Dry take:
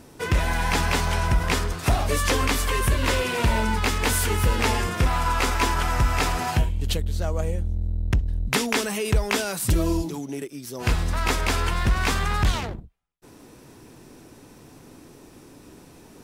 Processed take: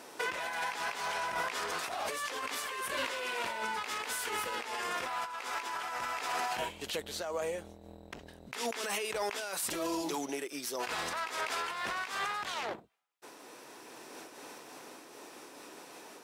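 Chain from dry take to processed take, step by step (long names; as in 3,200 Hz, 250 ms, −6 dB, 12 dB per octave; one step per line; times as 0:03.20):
high-pass filter 570 Hz 12 dB per octave
high-shelf EQ 6,900 Hz −6 dB
compressor whose output falls as the input rises −34 dBFS, ratio −1
brickwall limiter −25 dBFS, peak gain reduction 11 dB
amplitude modulation by smooth noise, depth 60%
level +3 dB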